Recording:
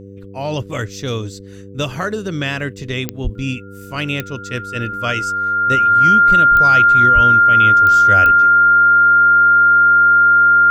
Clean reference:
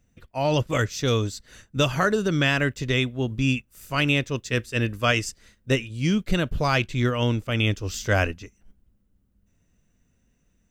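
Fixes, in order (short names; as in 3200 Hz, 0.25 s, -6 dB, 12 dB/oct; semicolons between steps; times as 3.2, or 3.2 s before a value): de-click; de-hum 98.5 Hz, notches 5; notch 1400 Hz, Q 30; 3.23–3.35 HPF 140 Hz 24 dB/oct; 7.14–7.26 HPF 140 Hz 24 dB/oct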